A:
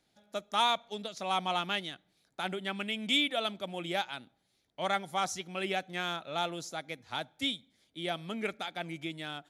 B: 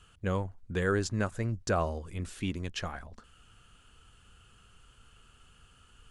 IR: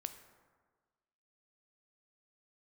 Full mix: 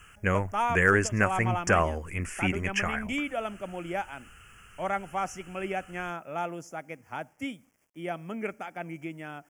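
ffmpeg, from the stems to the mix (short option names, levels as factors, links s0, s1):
-filter_complex "[0:a]volume=1.26[s0];[1:a]equalizer=f=2100:t=o:w=1.2:g=13.5,asoftclip=type=hard:threshold=0.237,crystalizer=i=2.5:c=0,volume=1.41[s1];[s0][s1]amix=inputs=2:normalize=0,highshelf=f=3000:g=-7.5,acrusher=bits=10:mix=0:aa=0.000001,asuperstop=centerf=3900:order=4:qfactor=1.4"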